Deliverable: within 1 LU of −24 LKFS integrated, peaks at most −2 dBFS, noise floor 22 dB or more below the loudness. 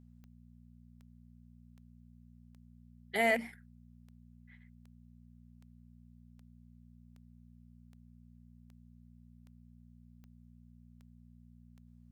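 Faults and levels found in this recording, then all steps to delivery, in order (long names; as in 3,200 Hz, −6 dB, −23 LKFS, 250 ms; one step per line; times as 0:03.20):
number of clicks 16; mains hum 60 Hz; hum harmonics up to 240 Hz; level of the hum −55 dBFS; integrated loudness −32.0 LKFS; sample peak −16.5 dBFS; target loudness −24.0 LKFS
→ click removal
hum removal 60 Hz, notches 4
level +8 dB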